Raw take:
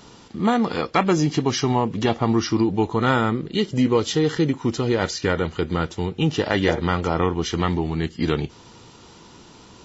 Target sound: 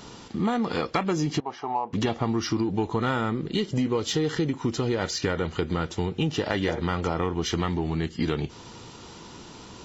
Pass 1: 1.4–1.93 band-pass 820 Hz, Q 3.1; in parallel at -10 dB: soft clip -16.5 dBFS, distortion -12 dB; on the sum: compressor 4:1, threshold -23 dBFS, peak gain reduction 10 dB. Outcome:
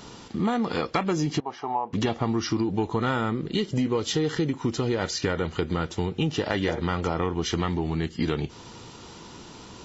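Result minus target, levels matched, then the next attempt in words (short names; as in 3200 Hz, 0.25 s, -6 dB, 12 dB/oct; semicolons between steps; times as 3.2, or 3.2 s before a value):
soft clip: distortion -7 dB
1.4–1.93 band-pass 820 Hz, Q 3.1; in parallel at -10 dB: soft clip -26 dBFS, distortion -5 dB; on the sum: compressor 4:1, threshold -23 dBFS, peak gain reduction 9.5 dB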